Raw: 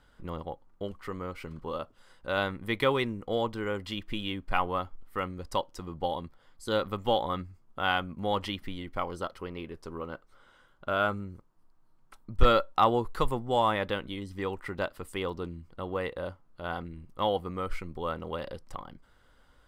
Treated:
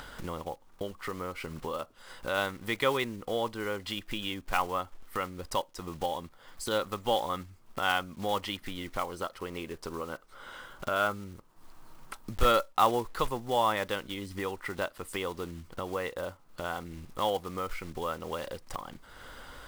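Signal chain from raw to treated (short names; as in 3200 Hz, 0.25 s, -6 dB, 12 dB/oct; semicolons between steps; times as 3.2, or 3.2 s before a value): block floating point 5-bit; low shelf 310 Hz -7 dB; upward compressor, threshold -30 dBFS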